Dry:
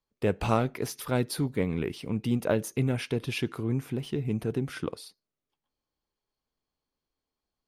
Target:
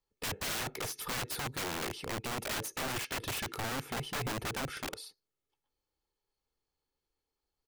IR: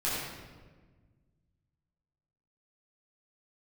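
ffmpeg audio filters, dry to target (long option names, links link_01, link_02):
-af "aecho=1:1:2.3:0.47,aeval=exprs='(mod(26.6*val(0)+1,2)-1)/26.6':channel_layout=same,volume=-2dB"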